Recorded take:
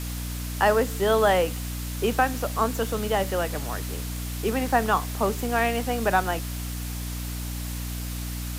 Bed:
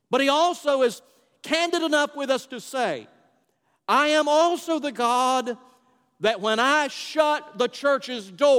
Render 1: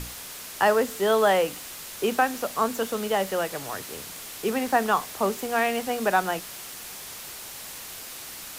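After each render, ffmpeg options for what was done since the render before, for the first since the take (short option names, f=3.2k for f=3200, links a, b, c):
-af "bandreject=f=60:t=h:w=6,bandreject=f=120:t=h:w=6,bandreject=f=180:t=h:w=6,bandreject=f=240:t=h:w=6,bandreject=f=300:t=h:w=6"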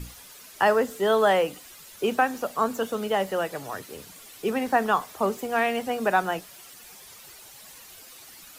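-af "afftdn=nr=11:nf=-40"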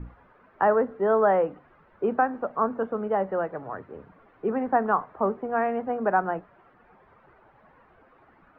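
-af "lowpass=f=1.5k:w=0.5412,lowpass=f=1.5k:w=1.3066,bandreject=f=47.57:t=h:w=4,bandreject=f=95.14:t=h:w=4,bandreject=f=142.71:t=h:w=4"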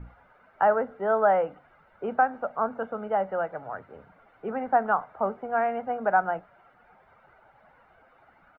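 -af "lowshelf=f=400:g=-7,aecho=1:1:1.4:0.43"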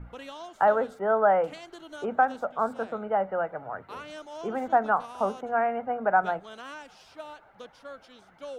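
-filter_complex "[1:a]volume=-22dB[a];[0:a][a]amix=inputs=2:normalize=0"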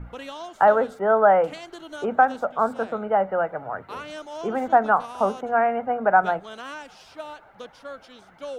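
-af "volume=5dB"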